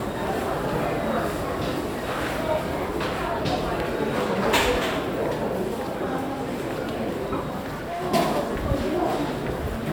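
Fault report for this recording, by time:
7.61–8.03 s: clipped -27.5 dBFS

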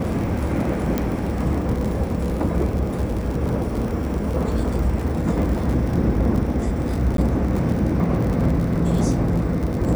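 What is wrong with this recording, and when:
crackle 58 per s -26 dBFS
0.98 s: pop -8 dBFS
7.17–7.18 s: dropout 12 ms

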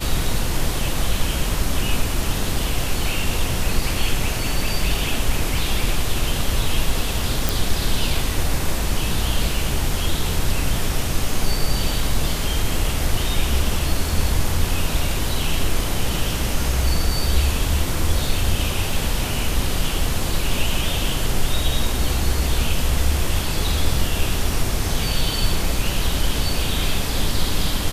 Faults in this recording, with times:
7.49 s: pop

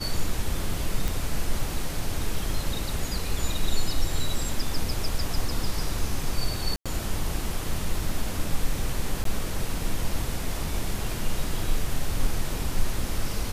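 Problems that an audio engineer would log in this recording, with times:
1.08 s: pop
6.76–6.86 s: dropout 96 ms
9.24–9.25 s: dropout 13 ms

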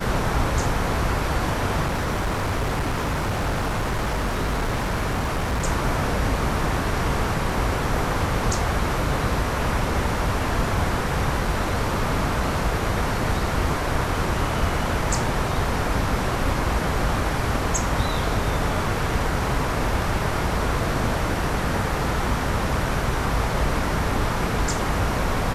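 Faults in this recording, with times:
1.84–5.65 s: clipped -20 dBFS

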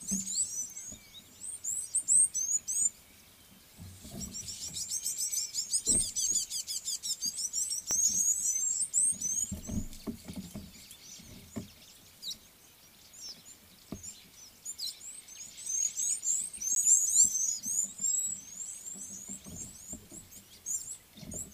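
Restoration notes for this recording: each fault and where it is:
7.91 s: pop -17 dBFS
13.29 s: pop -36 dBFS
16.75–16.76 s: dropout

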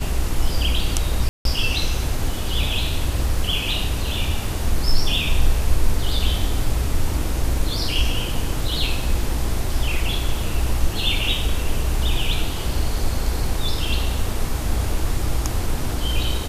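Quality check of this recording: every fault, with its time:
1.29–1.45 s: dropout 162 ms

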